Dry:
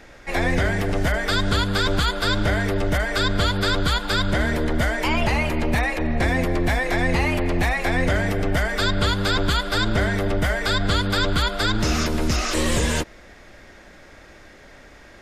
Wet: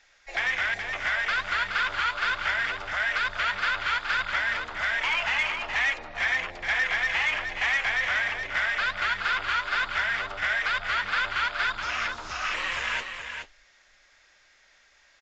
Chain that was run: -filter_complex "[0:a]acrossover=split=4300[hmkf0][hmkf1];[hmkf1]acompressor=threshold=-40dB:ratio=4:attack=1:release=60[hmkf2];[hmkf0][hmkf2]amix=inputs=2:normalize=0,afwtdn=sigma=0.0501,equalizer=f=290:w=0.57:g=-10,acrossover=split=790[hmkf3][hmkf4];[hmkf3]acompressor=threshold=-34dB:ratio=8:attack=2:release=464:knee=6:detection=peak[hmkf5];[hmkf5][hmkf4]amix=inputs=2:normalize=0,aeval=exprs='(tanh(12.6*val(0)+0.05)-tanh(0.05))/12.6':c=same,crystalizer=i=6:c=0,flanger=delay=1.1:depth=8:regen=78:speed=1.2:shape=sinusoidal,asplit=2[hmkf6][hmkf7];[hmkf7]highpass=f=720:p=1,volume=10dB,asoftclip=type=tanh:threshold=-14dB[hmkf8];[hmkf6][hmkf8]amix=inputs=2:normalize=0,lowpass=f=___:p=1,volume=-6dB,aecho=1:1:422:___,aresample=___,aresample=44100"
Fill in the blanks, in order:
2.9k, 0.447, 16000